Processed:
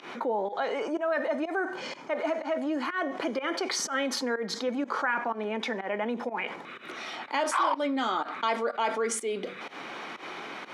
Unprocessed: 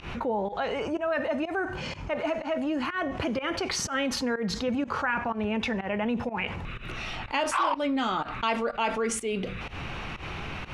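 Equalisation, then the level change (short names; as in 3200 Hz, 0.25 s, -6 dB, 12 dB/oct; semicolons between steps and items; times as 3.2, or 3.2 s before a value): HPF 260 Hz 24 dB/oct; notch 2700 Hz, Q 5.5; 0.0 dB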